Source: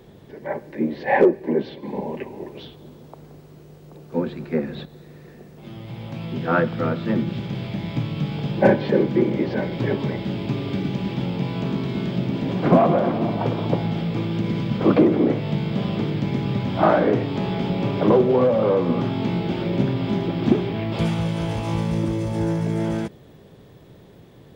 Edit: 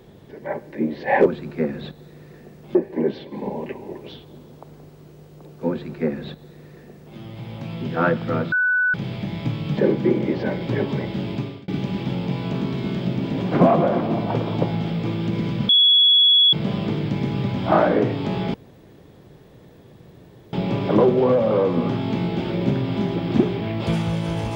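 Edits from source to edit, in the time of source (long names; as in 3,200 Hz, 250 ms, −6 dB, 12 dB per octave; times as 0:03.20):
0:04.20–0:05.69: duplicate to 0:01.26
0:07.03–0:07.45: beep over 1,490 Hz −16 dBFS
0:08.28–0:08.88: remove
0:10.44–0:10.79: fade out
0:14.80–0:15.64: beep over 3,370 Hz −11 dBFS
0:17.65: splice in room tone 1.99 s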